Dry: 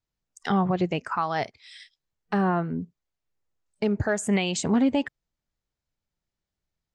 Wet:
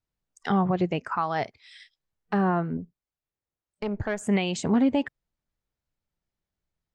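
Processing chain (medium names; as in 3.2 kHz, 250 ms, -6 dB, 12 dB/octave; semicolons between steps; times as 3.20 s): treble shelf 4 kHz -7.5 dB; 2.77–4.21 s: valve stage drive 18 dB, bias 0.75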